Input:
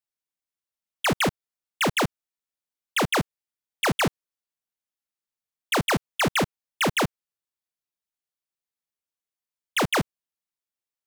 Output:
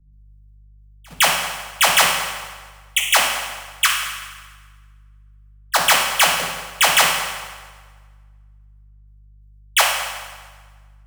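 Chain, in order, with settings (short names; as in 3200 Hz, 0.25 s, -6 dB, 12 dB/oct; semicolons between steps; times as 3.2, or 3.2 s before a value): tilt +2.5 dB/oct; level quantiser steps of 21 dB; step gate ".xxxx..xx.xx.x." 136 bpm -24 dB; hum 50 Hz, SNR 22 dB; reverb RT60 2.2 s, pre-delay 3 ms, DRR -2.5 dB; three-band expander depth 40%; gain +6 dB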